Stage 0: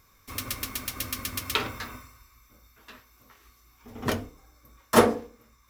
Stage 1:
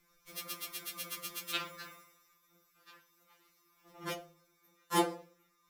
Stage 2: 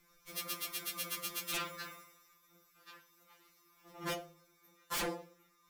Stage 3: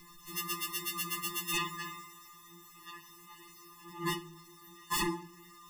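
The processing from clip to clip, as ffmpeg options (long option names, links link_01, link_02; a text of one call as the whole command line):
ffmpeg -i in.wav -af "afftfilt=real='re*2.83*eq(mod(b,8),0)':imag='im*2.83*eq(mod(b,8),0)':win_size=2048:overlap=0.75,volume=-6dB" out.wav
ffmpeg -i in.wav -af "aeval=exprs='0.0224*(abs(mod(val(0)/0.0224+3,4)-2)-1)':channel_layout=same,volume=2.5dB" out.wav
ffmpeg -i in.wav -af "aeval=exprs='val(0)+0.5*0.00133*sgn(val(0))':channel_layout=same,afftfilt=real='re*eq(mod(floor(b*sr/1024/420),2),0)':imag='im*eq(mod(floor(b*sr/1024/420),2),0)':win_size=1024:overlap=0.75,volume=7dB" out.wav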